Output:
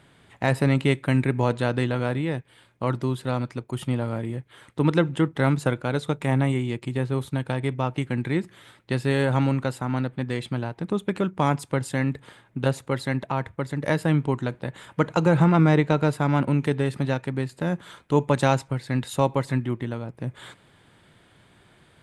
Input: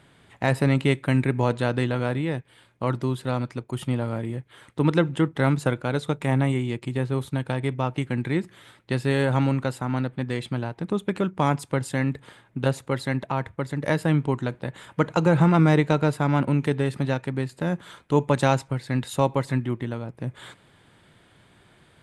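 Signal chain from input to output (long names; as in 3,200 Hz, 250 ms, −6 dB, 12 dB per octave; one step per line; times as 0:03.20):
0:15.44–0:15.98: high-shelf EQ 7,600 Hz −9 dB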